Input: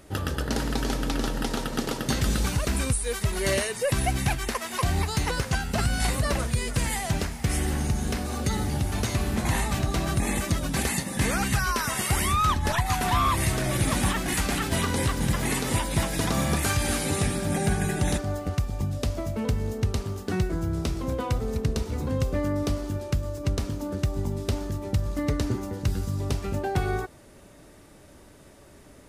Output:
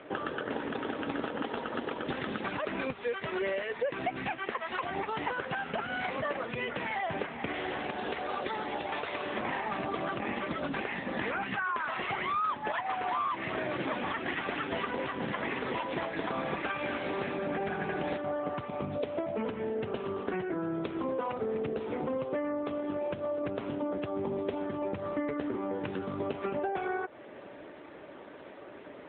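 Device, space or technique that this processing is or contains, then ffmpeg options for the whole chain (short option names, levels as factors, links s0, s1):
voicemail: -filter_complex "[0:a]asplit=3[s0][s1][s2];[s0]afade=t=out:st=7.52:d=0.02[s3];[s1]bass=f=250:g=-14,treble=f=4000:g=10,afade=t=in:st=7.52:d=0.02,afade=t=out:st=9.38:d=0.02[s4];[s2]afade=t=in:st=9.38:d=0.02[s5];[s3][s4][s5]amix=inputs=3:normalize=0,highpass=330,lowpass=3000,acompressor=threshold=0.0126:ratio=6,volume=2.66" -ar 8000 -c:a libopencore_amrnb -b:a 7950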